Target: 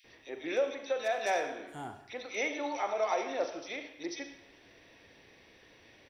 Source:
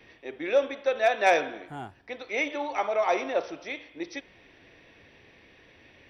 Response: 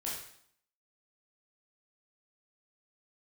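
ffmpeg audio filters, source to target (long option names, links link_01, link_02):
-filter_complex "[0:a]bass=frequency=250:gain=-3,treble=frequency=4000:gain=8,alimiter=limit=-18dB:level=0:latency=1:release=355,acrossover=split=2500[link_01][link_02];[link_01]adelay=40[link_03];[link_03][link_02]amix=inputs=2:normalize=0,asplit=2[link_04][link_05];[1:a]atrim=start_sample=2205,adelay=41[link_06];[link_05][link_06]afir=irnorm=-1:irlink=0,volume=-9.5dB[link_07];[link_04][link_07]amix=inputs=2:normalize=0,volume=-3dB"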